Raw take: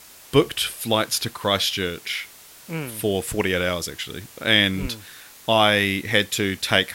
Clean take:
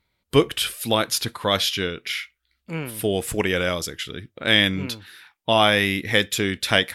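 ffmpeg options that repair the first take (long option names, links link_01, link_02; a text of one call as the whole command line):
ffmpeg -i in.wav -filter_complex "[0:a]asplit=3[link_01][link_02][link_03];[link_01]afade=type=out:start_time=4.81:duration=0.02[link_04];[link_02]highpass=frequency=140:width=0.5412,highpass=frequency=140:width=1.3066,afade=type=in:start_time=4.81:duration=0.02,afade=type=out:start_time=4.93:duration=0.02[link_05];[link_03]afade=type=in:start_time=4.93:duration=0.02[link_06];[link_04][link_05][link_06]amix=inputs=3:normalize=0,afwtdn=0.0056" out.wav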